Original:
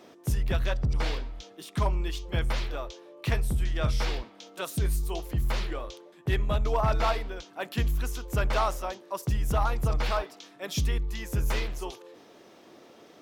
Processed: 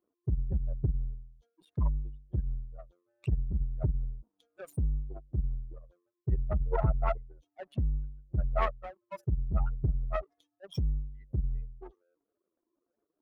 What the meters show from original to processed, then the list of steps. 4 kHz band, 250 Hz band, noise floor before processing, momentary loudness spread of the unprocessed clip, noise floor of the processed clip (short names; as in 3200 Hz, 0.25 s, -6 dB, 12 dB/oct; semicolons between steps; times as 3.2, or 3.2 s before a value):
-21.0 dB, -5.5 dB, -54 dBFS, 11 LU, under -85 dBFS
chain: spectral contrast raised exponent 3.5; power-law curve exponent 2; gain +3.5 dB